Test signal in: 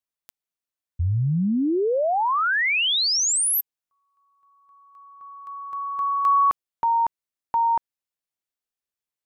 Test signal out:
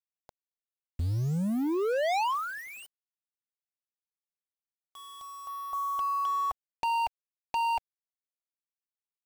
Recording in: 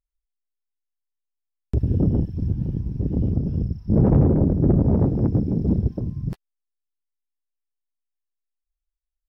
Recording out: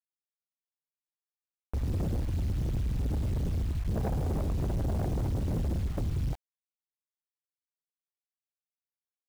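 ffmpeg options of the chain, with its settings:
-af "asubboost=boost=5.5:cutoff=85,acompressor=threshold=-27dB:ratio=8:attack=13:release=31:knee=1:detection=rms,lowpass=f=760:t=q:w=4.1,asoftclip=type=hard:threshold=-27dB,acrusher=bits=7:mix=0:aa=0.000001"

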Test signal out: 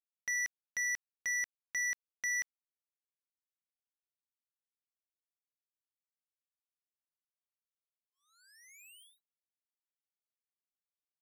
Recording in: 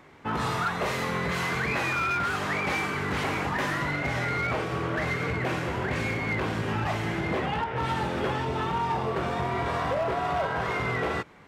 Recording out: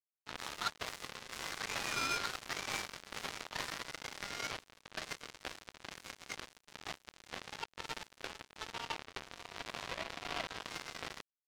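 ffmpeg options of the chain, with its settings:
-filter_complex "[0:a]highpass=f=850:p=1,acrossover=split=4100[a][b];[b]asoftclip=type=tanh:threshold=-37.5dB[c];[a][c]amix=inputs=2:normalize=0,acrusher=bits=3:mix=0:aa=0.5,volume=-3.5dB"

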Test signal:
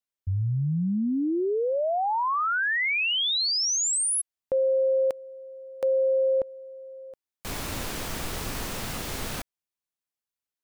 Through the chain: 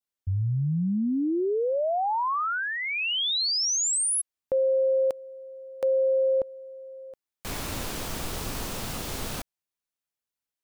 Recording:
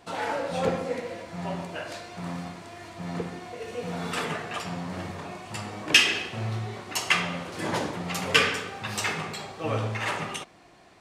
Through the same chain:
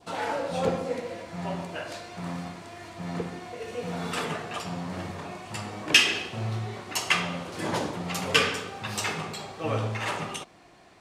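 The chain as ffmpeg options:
-af "adynamicequalizer=threshold=0.00631:dfrequency=1900:dqfactor=1.7:tfrequency=1900:tqfactor=1.7:attack=5:release=100:ratio=0.375:range=3:mode=cutabove:tftype=bell"

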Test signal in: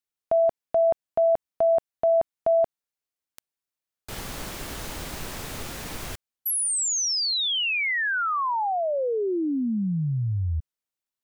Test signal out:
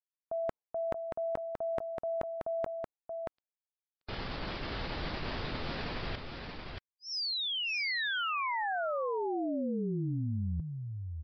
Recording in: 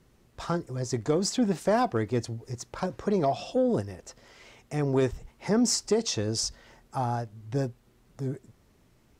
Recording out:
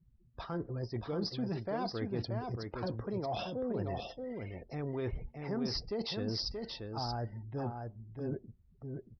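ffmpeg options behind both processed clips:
-af "afftdn=nr=31:nf=-48,aresample=11025,aresample=44100,areverse,acompressor=threshold=-35dB:ratio=12:attack=4.2:release=255:knee=1:detection=peak,areverse,aecho=1:1:629:0.562,volume=2.5dB"

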